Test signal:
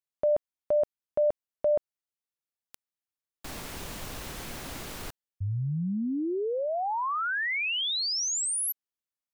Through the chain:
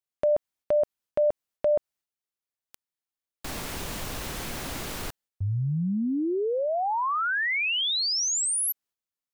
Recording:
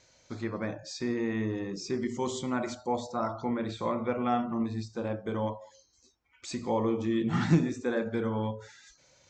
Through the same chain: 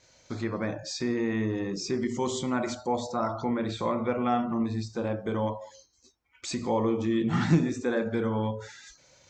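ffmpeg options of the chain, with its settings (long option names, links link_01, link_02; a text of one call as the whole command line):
ffmpeg -i in.wav -filter_complex "[0:a]agate=range=-7dB:threshold=-59dB:ratio=3:release=237:detection=peak,asplit=2[link_01][link_02];[link_02]acompressor=threshold=-36dB:ratio=6:attack=2:release=158:detection=peak,volume=0dB[link_03];[link_01][link_03]amix=inputs=2:normalize=0" out.wav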